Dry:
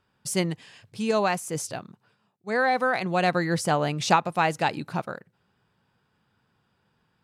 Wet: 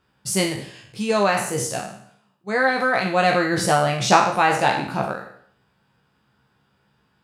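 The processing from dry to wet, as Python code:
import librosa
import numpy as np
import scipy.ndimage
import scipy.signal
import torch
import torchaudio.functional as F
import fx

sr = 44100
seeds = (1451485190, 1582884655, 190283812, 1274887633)

y = fx.spec_trails(x, sr, decay_s=0.63)
y = fx.doubler(y, sr, ms=15.0, db=-4.5)
y = y * 10.0 ** (2.0 / 20.0)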